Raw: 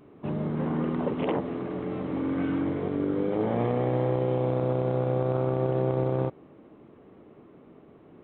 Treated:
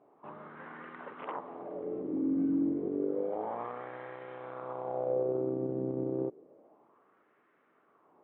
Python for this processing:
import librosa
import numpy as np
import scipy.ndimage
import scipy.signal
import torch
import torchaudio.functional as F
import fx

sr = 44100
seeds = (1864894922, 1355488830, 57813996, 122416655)

y = fx.wah_lfo(x, sr, hz=0.3, low_hz=270.0, high_hz=1700.0, q=2.7)